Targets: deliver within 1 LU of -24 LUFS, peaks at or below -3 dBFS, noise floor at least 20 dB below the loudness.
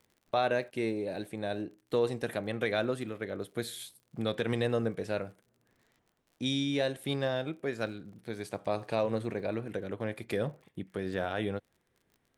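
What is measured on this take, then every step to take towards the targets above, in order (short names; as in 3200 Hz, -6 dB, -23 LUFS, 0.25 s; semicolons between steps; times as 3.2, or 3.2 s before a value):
ticks 42/s; loudness -34.0 LUFS; peak -16.0 dBFS; loudness target -24.0 LUFS
-> de-click; gain +10 dB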